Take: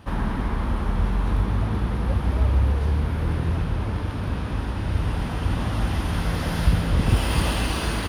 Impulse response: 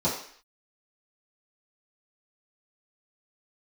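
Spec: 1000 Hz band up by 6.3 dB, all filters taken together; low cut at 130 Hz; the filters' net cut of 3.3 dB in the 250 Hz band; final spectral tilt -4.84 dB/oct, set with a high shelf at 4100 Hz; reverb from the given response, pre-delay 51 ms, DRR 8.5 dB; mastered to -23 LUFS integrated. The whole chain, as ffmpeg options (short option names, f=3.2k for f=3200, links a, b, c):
-filter_complex "[0:a]highpass=130,equalizer=f=250:t=o:g=-4,equalizer=f=1k:t=o:g=7.5,highshelf=f=4.1k:g=4.5,asplit=2[a][b];[1:a]atrim=start_sample=2205,adelay=51[c];[b][c]afir=irnorm=-1:irlink=0,volume=-20dB[d];[a][d]amix=inputs=2:normalize=0,volume=3.5dB"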